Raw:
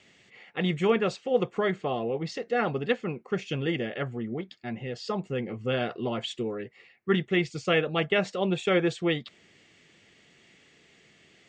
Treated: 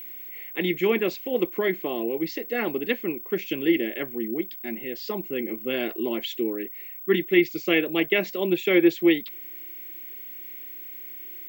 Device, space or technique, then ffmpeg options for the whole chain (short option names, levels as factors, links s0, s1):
old television with a line whistle: -af "highpass=f=210:w=0.5412,highpass=f=210:w=1.3066,equalizer=f=330:t=q:w=4:g=10,equalizer=f=500:t=q:w=4:g=-4,equalizer=f=750:t=q:w=4:g=-7,equalizer=f=1300:t=q:w=4:g=-10,equalizer=f=2200:t=q:w=4:g=7,lowpass=f=7000:w=0.5412,lowpass=f=7000:w=1.3066,aeval=exprs='val(0)+0.0126*sin(2*PI*15734*n/s)':c=same,volume=1.19"